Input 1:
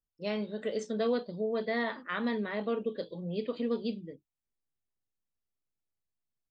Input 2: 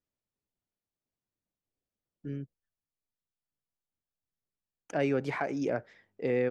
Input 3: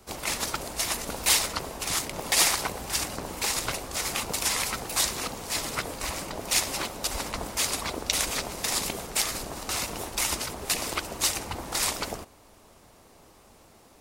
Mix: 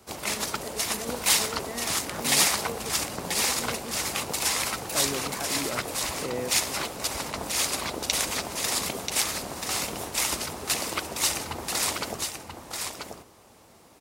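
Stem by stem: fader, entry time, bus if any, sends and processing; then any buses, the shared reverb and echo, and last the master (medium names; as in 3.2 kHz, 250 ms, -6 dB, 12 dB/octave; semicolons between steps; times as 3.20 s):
-7.5 dB, 0.00 s, no send, no echo send, none
-4.5 dB, 0.00 s, no send, no echo send, three bands compressed up and down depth 40%
0.0 dB, 0.00 s, no send, echo send -6 dB, high-pass 73 Hz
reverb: none
echo: delay 985 ms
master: none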